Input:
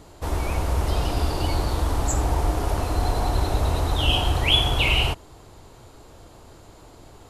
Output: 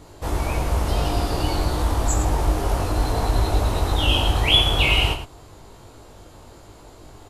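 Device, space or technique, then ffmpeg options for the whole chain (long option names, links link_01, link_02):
slapback doubling: -filter_complex "[0:a]asplit=3[link_01][link_02][link_03];[link_02]adelay=20,volume=-3dB[link_04];[link_03]adelay=111,volume=-8.5dB[link_05];[link_01][link_04][link_05]amix=inputs=3:normalize=0"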